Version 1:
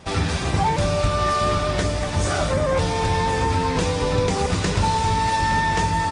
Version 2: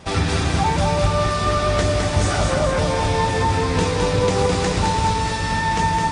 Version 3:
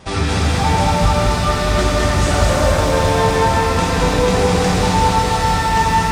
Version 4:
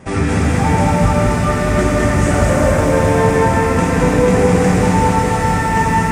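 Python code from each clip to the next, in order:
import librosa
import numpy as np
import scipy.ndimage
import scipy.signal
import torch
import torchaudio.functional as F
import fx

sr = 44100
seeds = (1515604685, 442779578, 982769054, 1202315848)

y1 = fx.rider(x, sr, range_db=10, speed_s=0.5)
y1 = fx.echo_feedback(y1, sr, ms=211, feedback_pct=51, wet_db=-4.0)
y2 = fx.rev_shimmer(y1, sr, seeds[0], rt60_s=3.5, semitones=7, shimmer_db=-8, drr_db=-1.0)
y3 = fx.graphic_eq(y2, sr, hz=(125, 250, 500, 2000, 4000, 8000), db=(6, 8, 4, 7, -11, 5))
y3 = y3 * librosa.db_to_amplitude(-3.0)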